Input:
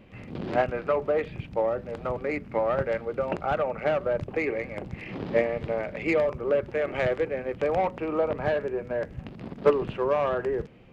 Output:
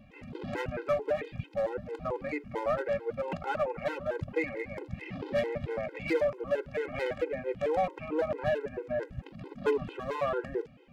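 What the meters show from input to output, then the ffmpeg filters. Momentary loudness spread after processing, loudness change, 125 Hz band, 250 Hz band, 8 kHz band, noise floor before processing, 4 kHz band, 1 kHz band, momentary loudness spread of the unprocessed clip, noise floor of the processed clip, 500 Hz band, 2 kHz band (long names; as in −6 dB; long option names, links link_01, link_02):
8 LU, −5.5 dB, −4.5 dB, −5.0 dB, can't be measured, −45 dBFS, −2.5 dB, −5.5 dB, 8 LU, −54 dBFS, −5.5 dB, −4.5 dB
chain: -af "volume=20.5dB,asoftclip=hard,volume=-20.5dB,afftfilt=real='re*gt(sin(2*PI*4.5*pts/sr)*(1-2*mod(floor(b*sr/1024/270),2)),0)':imag='im*gt(sin(2*PI*4.5*pts/sr)*(1-2*mod(floor(b*sr/1024/270),2)),0)':win_size=1024:overlap=0.75,volume=-1dB"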